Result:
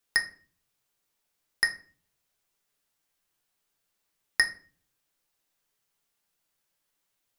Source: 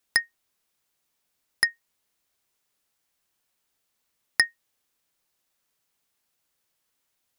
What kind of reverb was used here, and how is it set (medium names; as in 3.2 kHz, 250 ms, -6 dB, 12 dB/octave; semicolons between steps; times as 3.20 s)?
simulated room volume 32 m³, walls mixed, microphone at 0.34 m; trim -3.5 dB